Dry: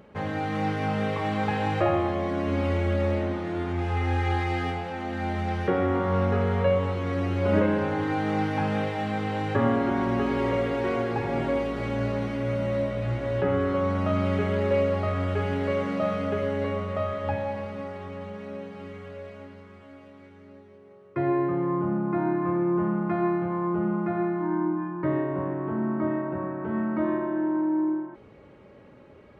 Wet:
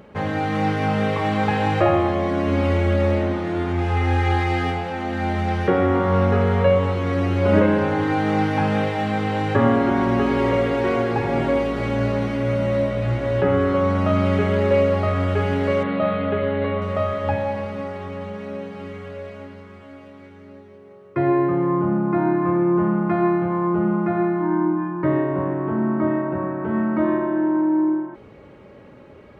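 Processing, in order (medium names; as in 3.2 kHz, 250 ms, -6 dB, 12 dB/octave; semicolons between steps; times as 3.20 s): 15.83–16.82 s: elliptic low-pass 4 kHz, stop band 40 dB; trim +6 dB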